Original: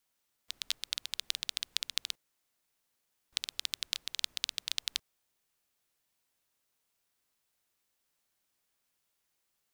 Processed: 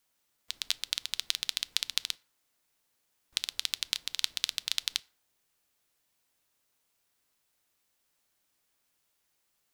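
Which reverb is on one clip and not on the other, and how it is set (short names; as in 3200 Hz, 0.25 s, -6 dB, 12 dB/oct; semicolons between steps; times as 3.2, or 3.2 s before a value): FDN reverb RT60 0.52 s, high-frequency decay 0.55×, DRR 17 dB; gain +3.5 dB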